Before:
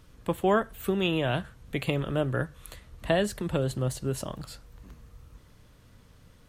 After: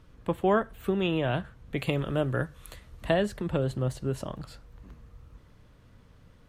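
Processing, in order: treble shelf 4.4 kHz -12 dB, from 1.78 s -2.5 dB, from 3.14 s -11 dB

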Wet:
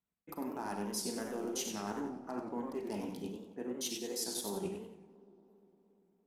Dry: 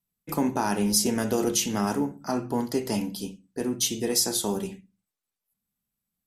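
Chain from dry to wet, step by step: local Wiener filter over 9 samples; high-pass 58 Hz; peaking EQ 130 Hz -12.5 dB 0.66 oct; transient shaper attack +1 dB, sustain -7 dB; reverse; compression, threshold -38 dBFS, peak gain reduction 18 dB; reverse; feedback echo behind a low-pass 116 ms, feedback 83%, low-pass 1.1 kHz, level -21 dB; Schroeder reverb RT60 0.58 s, combs from 33 ms, DRR 7.5 dB; modulated delay 93 ms, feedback 42%, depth 193 cents, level -6 dB

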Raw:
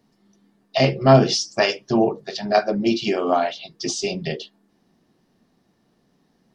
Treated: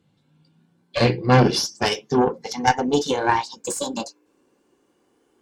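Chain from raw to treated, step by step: gliding tape speed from 70% -> 172%; Chebyshev shaper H 4 -13 dB, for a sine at -1 dBFS; comb of notches 640 Hz

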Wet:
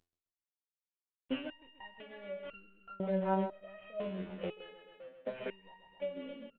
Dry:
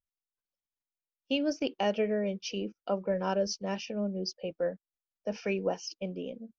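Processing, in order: CVSD coder 16 kbps; doubling 26 ms -9 dB; feedback delay 131 ms, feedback 44%, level -11 dB; compression 6:1, threshold -40 dBFS, peak gain reduction 15.5 dB; resonator arpeggio 2 Hz 86–1400 Hz; trim +16 dB

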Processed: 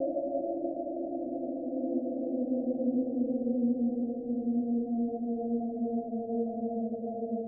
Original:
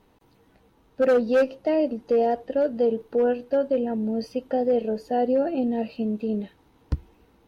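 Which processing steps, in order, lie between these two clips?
Paulstretch 19×, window 0.25 s, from 5.45 s; steep low-pass 710 Hz 96 dB/octave; trim -7 dB

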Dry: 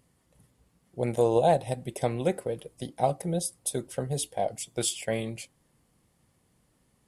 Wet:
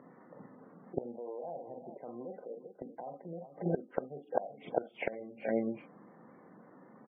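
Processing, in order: high-pass 200 Hz 24 dB/octave; in parallel at -3 dB: compressor with a negative ratio -31 dBFS, ratio -1; on the sum: low-pass 1.7 kHz 24 dB/octave; on a send: multi-tap echo 42/46/370/405 ms -7.5/-10.5/-19.5/-15 dB; on the sum: peak limiter -17 dBFS, peak gain reduction 8.5 dB; inverted gate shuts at -26 dBFS, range -26 dB; spectral gate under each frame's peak -25 dB strong; trim +9 dB

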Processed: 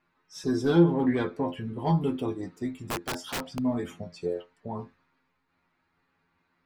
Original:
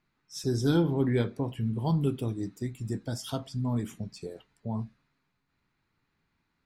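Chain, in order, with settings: overdrive pedal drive 15 dB, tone 1.1 kHz, clips at -13 dBFS; inharmonic resonator 85 Hz, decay 0.2 s, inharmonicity 0.002; 2.79–3.59 s: integer overflow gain 34 dB; trim +8.5 dB

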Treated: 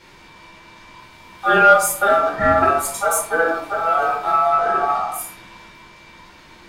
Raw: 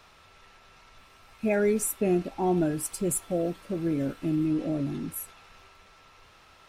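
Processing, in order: ring modulator 1 kHz; simulated room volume 460 m³, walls furnished, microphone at 4.6 m; Chebyshev shaper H 4 -29 dB, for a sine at -6.5 dBFS; trim +5.5 dB

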